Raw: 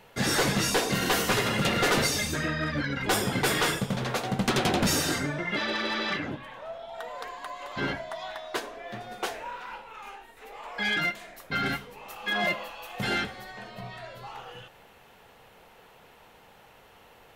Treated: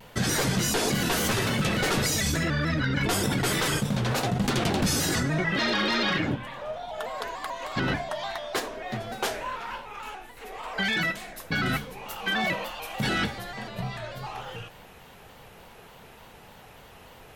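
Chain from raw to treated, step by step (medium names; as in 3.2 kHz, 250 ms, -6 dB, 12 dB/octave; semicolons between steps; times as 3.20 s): tone controls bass +6 dB, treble +3 dB; in parallel at 0 dB: compressor with a negative ratio -29 dBFS, ratio -0.5; on the sum: vibrato with a chosen wave square 3.4 Hz, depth 100 cents; trim -4 dB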